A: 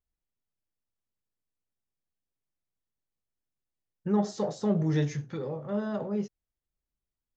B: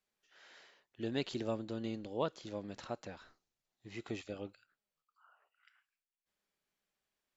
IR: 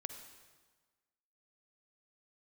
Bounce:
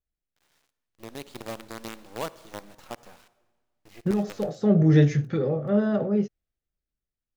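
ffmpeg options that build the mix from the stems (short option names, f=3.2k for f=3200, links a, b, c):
-filter_complex "[0:a]lowpass=f=2.4k:p=1,equalizer=f=960:t=o:w=0.3:g=-14,volume=0dB[a];[1:a]equalizer=f=880:t=o:w=1.1:g=4.5,acrusher=bits=6:dc=4:mix=0:aa=0.000001,volume=-12.5dB,asplit=3[b][c][d];[c]volume=-5dB[e];[d]apad=whole_len=324802[f];[a][f]sidechaincompress=threshold=-54dB:ratio=4:attack=8.7:release=672[g];[2:a]atrim=start_sample=2205[h];[e][h]afir=irnorm=-1:irlink=0[i];[g][b][i]amix=inputs=3:normalize=0,dynaudnorm=f=200:g=13:m=10dB"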